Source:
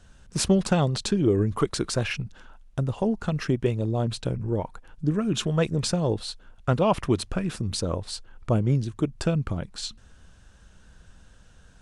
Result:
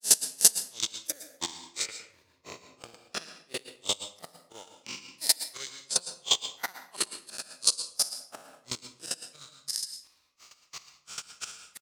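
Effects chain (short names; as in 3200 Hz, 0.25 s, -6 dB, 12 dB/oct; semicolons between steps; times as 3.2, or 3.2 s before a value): spectral swells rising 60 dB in 2.40 s; recorder AGC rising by 14 dB/s; HPF 89 Hz; differentiator; outdoor echo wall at 20 m, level -28 dB; in parallel at -9.5 dB: requantised 8-bit, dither triangular; on the sum: chopper 5.6 Hz, depth 65%, duty 20%; grains 0.224 s, grains 2.9/s, pitch spread up and down by 7 st; reverb RT60 0.55 s, pre-delay 0.104 s, DRR 3 dB; transient shaper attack +11 dB, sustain -3 dB; gain -1.5 dB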